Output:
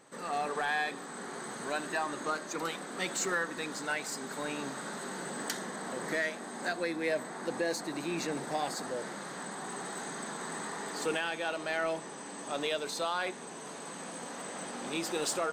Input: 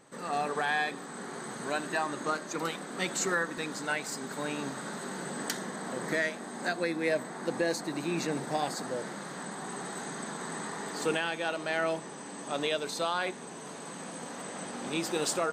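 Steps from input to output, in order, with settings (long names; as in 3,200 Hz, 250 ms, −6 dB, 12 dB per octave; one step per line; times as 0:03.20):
low-shelf EQ 160 Hz −8.5 dB
in parallel at −5 dB: soft clipping −35 dBFS, distortion −6 dB
on the sum: level −3.5 dB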